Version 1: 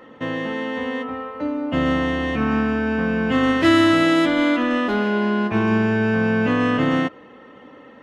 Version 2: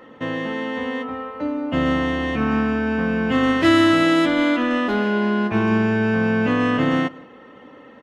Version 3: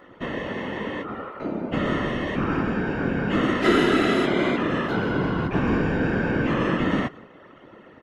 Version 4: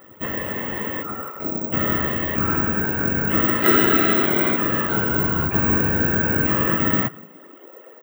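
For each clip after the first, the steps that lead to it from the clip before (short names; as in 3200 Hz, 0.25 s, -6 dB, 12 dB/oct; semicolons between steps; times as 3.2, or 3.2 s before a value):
outdoor echo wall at 29 m, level -23 dB
whisperiser; gain -4 dB
careless resampling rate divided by 2×, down none, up zero stuff; high-pass sweep 70 Hz -> 470 Hz, 6.81–7.74; dynamic EQ 1500 Hz, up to +5 dB, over -40 dBFS, Q 1.4; gain -1 dB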